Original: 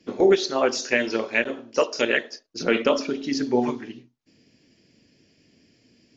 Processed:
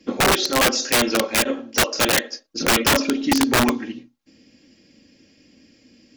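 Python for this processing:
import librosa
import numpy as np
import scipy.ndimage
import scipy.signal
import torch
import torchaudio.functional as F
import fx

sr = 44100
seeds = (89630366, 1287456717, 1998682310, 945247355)

y = x + 0.54 * np.pad(x, (int(3.7 * sr / 1000.0), 0))[:len(x)]
y = (np.mod(10.0 ** (15.0 / 20.0) * y + 1.0, 2.0) - 1.0) / 10.0 ** (15.0 / 20.0)
y = y * 10.0 ** (4.5 / 20.0)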